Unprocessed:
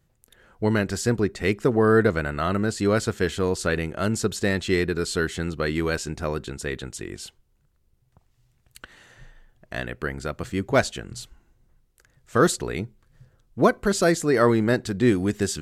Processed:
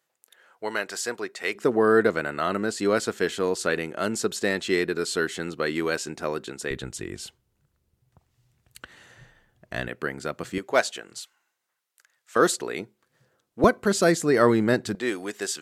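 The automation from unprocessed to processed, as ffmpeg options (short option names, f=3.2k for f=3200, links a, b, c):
-af "asetnsamples=n=441:p=0,asendcmd='1.55 highpass f 250;6.71 highpass f 63;9.88 highpass f 190;10.58 highpass f 450;11.19 highpass f 1100;12.36 highpass f 300;13.64 highpass f 130;14.95 highpass f 520',highpass=630"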